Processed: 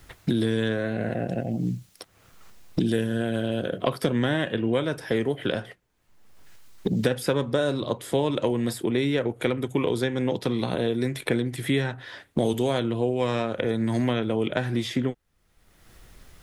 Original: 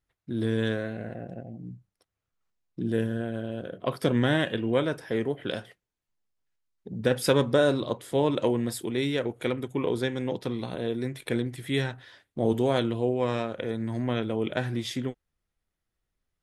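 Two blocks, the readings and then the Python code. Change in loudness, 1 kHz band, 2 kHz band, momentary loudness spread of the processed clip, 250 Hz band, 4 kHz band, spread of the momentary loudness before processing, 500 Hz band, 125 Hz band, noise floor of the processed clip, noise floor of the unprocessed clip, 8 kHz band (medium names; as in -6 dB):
+2.0 dB, +1.5 dB, +2.0 dB, 5 LU, +3.0 dB, +2.0 dB, 13 LU, +1.5 dB, +3.0 dB, -63 dBFS, -85 dBFS, +1.5 dB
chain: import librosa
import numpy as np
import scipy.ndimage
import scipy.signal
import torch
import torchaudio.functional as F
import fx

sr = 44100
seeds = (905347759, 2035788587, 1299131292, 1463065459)

y = fx.band_squash(x, sr, depth_pct=100)
y = y * librosa.db_to_amplitude(2.0)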